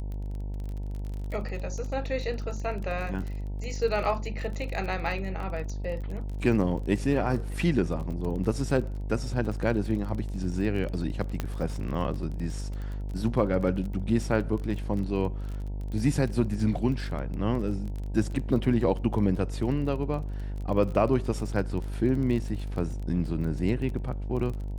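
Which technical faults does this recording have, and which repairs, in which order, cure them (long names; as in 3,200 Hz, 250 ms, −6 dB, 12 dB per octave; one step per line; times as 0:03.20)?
mains buzz 50 Hz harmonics 19 −33 dBFS
surface crackle 27 per second −34 dBFS
0:11.40: click −15 dBFS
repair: click removal
hum removal 50 Hz, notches 19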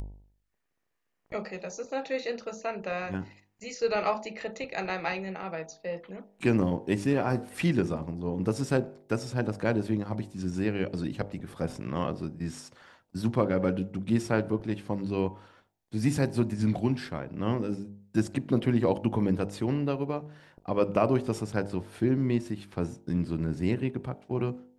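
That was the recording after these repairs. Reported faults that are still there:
none of them is left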